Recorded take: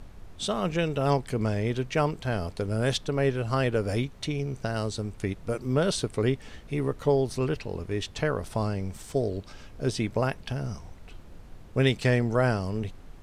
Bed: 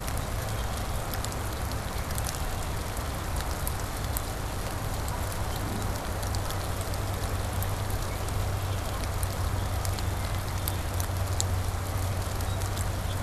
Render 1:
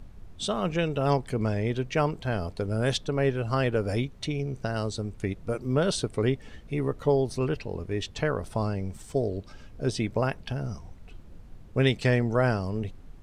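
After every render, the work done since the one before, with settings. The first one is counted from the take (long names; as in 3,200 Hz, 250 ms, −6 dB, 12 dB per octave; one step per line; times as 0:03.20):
broadband denoise 6 dB, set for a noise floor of −47 dBFS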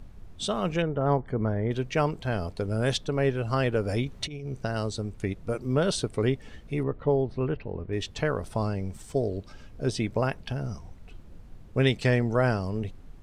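0:00.82–0:01.71: Savitzky-Golay smoothing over 41 samples
0:04.06–0:04.52: compressor whose output falls as the input rises −33 dBFS, ratio −0.5
0:06.83–0:07.93: high-frequency loss of the air 420 metres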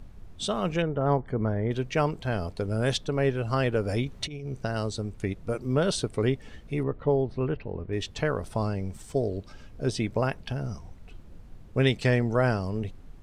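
no processing that can be heard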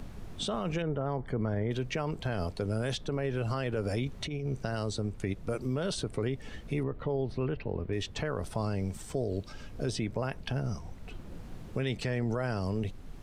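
brickwall limiter −23.5 dBFS, peak gain reduction 11.5 dB
multiband upward and downward compressor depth 40%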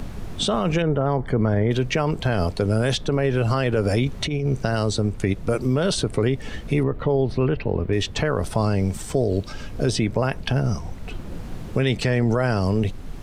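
level +11 dB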